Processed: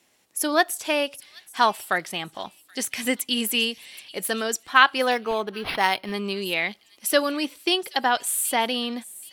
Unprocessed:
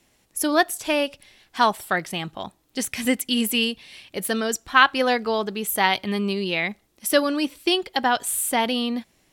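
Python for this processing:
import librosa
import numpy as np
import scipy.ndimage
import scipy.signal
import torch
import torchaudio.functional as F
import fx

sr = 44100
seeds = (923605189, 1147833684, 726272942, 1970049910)

y = fx.highpass(x, sr, hz=360.0, slope=6)
y = fx.echo_wet_highpass(y, sr, ms=777, feedback_pct=31, hz=3300.0, wet_db=-16)
y = fx.resample_linear(y, sr, factor=6, at=(5.11, 6.14))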